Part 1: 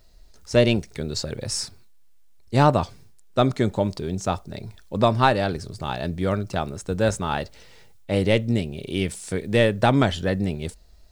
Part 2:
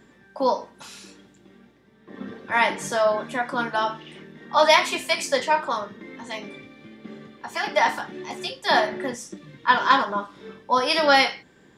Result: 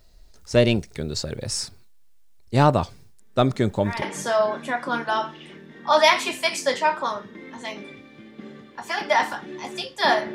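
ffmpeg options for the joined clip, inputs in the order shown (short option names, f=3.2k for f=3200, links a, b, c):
-filter_complex "[1:a]asplit=2[a][b];[0:a]apad=whole_dur=10.34,atrim=end=10.34,atrim=end=4.022[c];[b]atrim=start=2.678:end=9[d];[a]atrim=start=1.85:end=2.68,asetpts=PTS-STARTPTS,volume=-12.5dB,afade=t=in:d=0.004:c=hsin,afade=t=out:st=0.826:d=0.004:c=hsin,adelay=3190[e];[c][d]acrossfade=d=0.004:c1=hsin:c2=hsin[f];[f][e]amix=inputs=2:normalize=0"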